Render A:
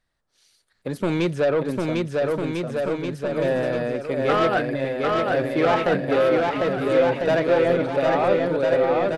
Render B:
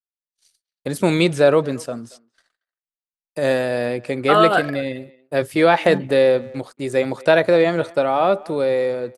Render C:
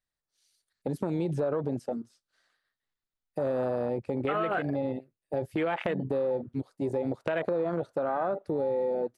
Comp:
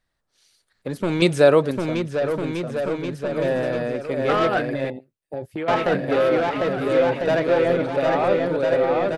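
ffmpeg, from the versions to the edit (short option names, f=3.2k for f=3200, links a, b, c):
-filter_complex "[0:a]asplit=3[a][b][c];[a]atrim=end=1.222[d];[1:a]atrim=start=1.218:end=1.712[e];[b]atrim=start=1.708:end=4.902[f];[2:a]atrim=start=4.898:end=5.682[g];[c]atrim=start=5.678[h];[d][e]acrossfade=d=0.004:c1=hsin:c2=hsin[i];[i][f]acrossfade=d=0.004:c1=hsin:c2=hsin[j];[j][g]acrossfade=d=0.004:c1=hsin:c2=hsin[k];[k][h]acrossfade=d=0.004:c1=hsin:c2=hsin"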